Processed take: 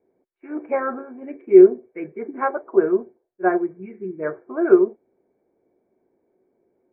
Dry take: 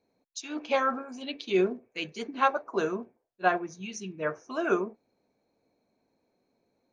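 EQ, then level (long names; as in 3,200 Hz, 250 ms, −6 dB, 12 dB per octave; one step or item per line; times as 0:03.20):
Chebyshev low-pass with heavy ripple 2,300 Hz, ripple 3 dB
high-frequency loss of the air 340 metres
parametric band 370 Hz +14.5 dB 0.36 octaves
+4.0 dB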